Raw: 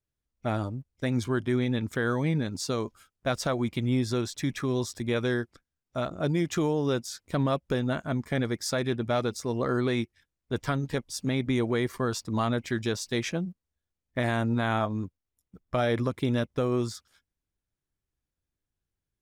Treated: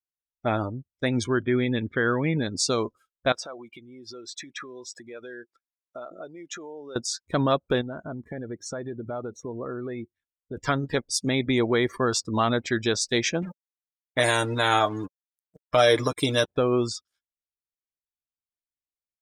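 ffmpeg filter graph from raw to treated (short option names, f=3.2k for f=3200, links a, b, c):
-filter_complex "[0:a]asettb=1/sr,asplit=3[a][b][c];[a]atrim=end=1.274[d];[b]atrim=start=1.27:end=2.37,asetpts=PTS-STARTPTS,afade=t=in:d=0.004:c=qsin,afade=t=out:st=1.096:d=0.004:c=qsin,lowpass=f=3.4k:w=0.5412,lowpass=f=3.4k:w=1.3066,equalizer=f=760:t=o:w=0.85:g=-4.5[e];[c]atrim=start=2.366[f];[d][e]acrossfade=d=0.004:c1=hsin:c2=qsin[g];[g][f]acrossfade=d=0.004:c1=qsin:c2=hsin,asettb=1/sr,asplit=3[h][i][j];[h]atrim=end=3.324[k];[i]atrim=start=3.32:end=6.96,asetpts=PTS-STARTPTS,afade=t=in:d=0.004:c=qsin,afade=t=out:st=3.636:d=0.004:c=qsin,acompressor=threshold=-36dB:ratio=10:attack=3.2:release=140:knee=1:detection=peak,bass=f=250:g=-15,treble=f=4k:g=-2[l];[j]atrim=start=6.956[m];[k][l]acrossfade=d=0.004:c1=hsin:c2=qsin[n];[n][m]acrossfade=d=0.004:c1=qsin:c2=hsin,asettb=1/sr,asplit=3[o][p][q];[o]atrim=end=7.814[r];[p]atrim=start=7.81:end=10.57,asetpts=PTS-STARTPTS,afade=t=in:d=0.004:c=qsin,afade=t=out:st=2.756:d=0.004:c=qsin,highshelf=f=2.5k:g=-11,acompressor=threshold=-34dB:ratio=4:attack=3.2:release=140:knee=1:detection=peak,asuperstop=centerf=4900:order=4:qfactor=6[s];[q]atrim=start=10.566[t];[r][s]acrossfade=d=0.004:c1=hsin:c2=qsin[u];[u][t]acrossfade=d=0.004:c1=qsin:c2=hsin,asettb=1/sr,asplit=3[v][w][x];[v]atrim=end=13.424[y];[w]atrim=start=13.42:end=16.48,asetpts=PTS-STARTPTS,afade=t=in:d=0.004:c=qsin,afade=t=out:st=3.056:d=0.004:c=qsin,bass=f=250:g=-4,treble=f=4k:g=11,aecho=1:1:6.6:0.64,atrim=end_sample=134946,acrusher=bits=6:mix=0:aa=0.5[z];[x]atrim=start=16.476[aa];[y][z]acrossfade=d=0.004:c1=hsin:c2=qsin[ab];[ab][aa]acrossfade=d=0.004:c1=qsin:c2=hsin,afftdn=nr=25:nf=-44,firequalizer=gain_entry='entry(170,0);entry(350,5);entry(5000,10)':delay=0.05:min_phase=1"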